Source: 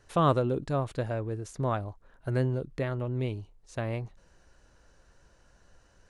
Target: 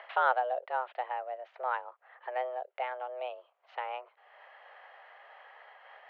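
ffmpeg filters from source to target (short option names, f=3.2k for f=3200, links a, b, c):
-af "acompressor=mode=upward:threshold=-31dB:ratio=2.5,highpass=f=290:t=q:w=0.5412,highpass=f=290:t=q:w=1.307,lowpass=f=2.9k:t=q:w=0.5176,lowpass=f=2.9k:t=q:w=0.7071,lowpass=f=2.9k:t=q:w=1.932,afreqshift=250,volume=-1.5dB"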